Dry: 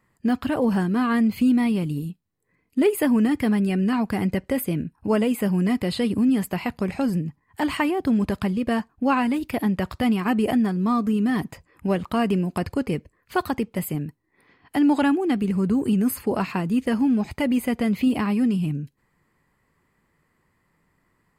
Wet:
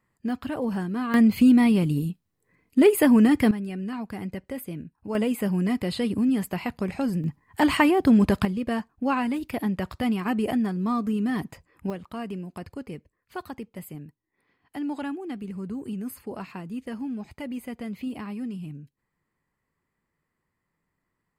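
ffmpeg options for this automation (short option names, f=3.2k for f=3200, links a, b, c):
-af "asetnsamples=n=441:p=0,asendcmd='1.14 volume volume 2.5dB;3.51 volume volume -10dB;5.15 volume volume -3dB;7.24 volume volume 3.5dB;8.45 volume volume -4dB;11.9 volume volume -12dB',volume=-6.5dB"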